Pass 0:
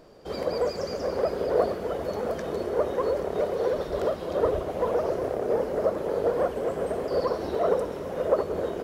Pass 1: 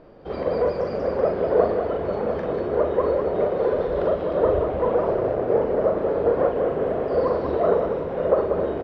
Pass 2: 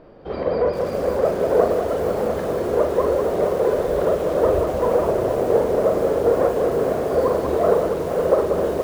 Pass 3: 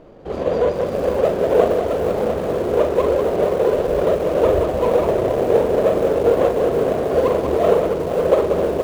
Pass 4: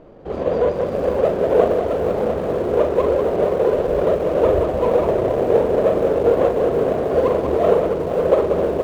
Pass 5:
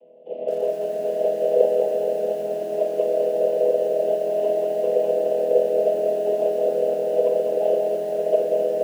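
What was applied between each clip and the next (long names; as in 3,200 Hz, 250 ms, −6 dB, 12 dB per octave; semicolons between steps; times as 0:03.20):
high-frequency loss of the air 370 metres; loudspeakers that aren't time-aligned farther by 14 metres −5 dB, 66 metres −6 dB; level +4 dB
feedback echo at a low word length 470 ms, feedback 55%, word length 6 bits, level −9 dB; level +2 dB
running median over 25 samples; level +2.5 dB
high-shelf EQ 3,600 Hz −8 dB
channel vocoder with a chord as carrier major triad, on E3; pair of resonant band-passes 1,300 Hz, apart 2.3 octaves; feedback echo at a low word length 212 ms, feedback 55%, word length 8 bits, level −7.5 dB; level +5 dB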